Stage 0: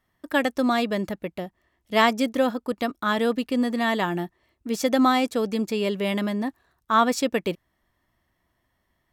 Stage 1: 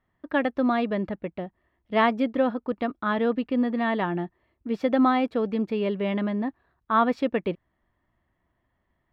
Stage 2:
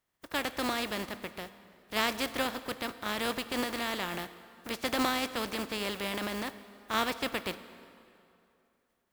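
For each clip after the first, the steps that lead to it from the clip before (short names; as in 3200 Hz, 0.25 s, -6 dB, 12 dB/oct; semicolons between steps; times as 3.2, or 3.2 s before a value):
air absorption 410 m
spectral contrast lowered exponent 0.37; plate-style reverb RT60 2.7 s, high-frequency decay 0.75×, DRR 12.5 dB; gain -8.5 dB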